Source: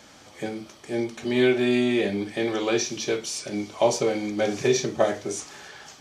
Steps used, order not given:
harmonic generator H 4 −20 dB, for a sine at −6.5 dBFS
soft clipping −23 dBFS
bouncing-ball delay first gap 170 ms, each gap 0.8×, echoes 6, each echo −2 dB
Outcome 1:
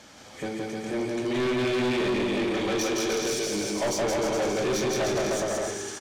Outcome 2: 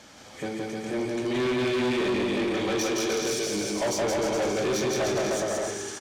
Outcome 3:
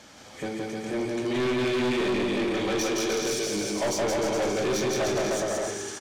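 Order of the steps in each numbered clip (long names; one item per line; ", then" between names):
harmonic generator, then bouncing-ball delay, then soft clipping
bouncing-ball delay, then soft clipping, then harmonic generator
bouncing-ball delay, then harmonic generator, then soft clipping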